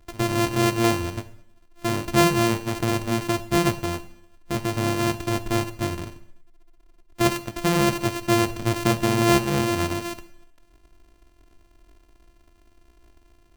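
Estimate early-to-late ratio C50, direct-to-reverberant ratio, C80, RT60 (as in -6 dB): 15.0 dB, 11.5 dB, 17.5 dB, 0.75 s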